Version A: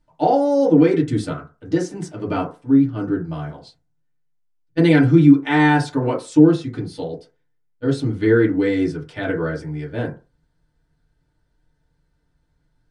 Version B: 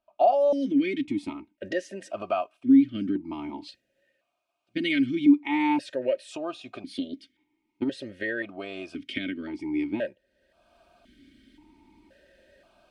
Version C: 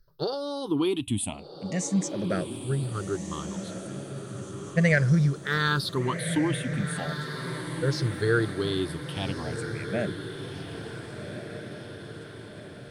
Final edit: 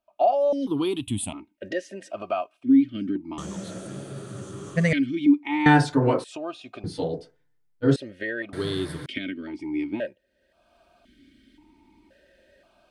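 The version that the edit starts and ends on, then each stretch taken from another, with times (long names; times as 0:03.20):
B
0:00.67–0:01.33: punch in from C
0:03.38–0:04.93: punch in from C
0:05.66–0:06.24: punch in from A
0:06.84–0:07.96: punch in from A
0:08.53–0:09.06: punch in from C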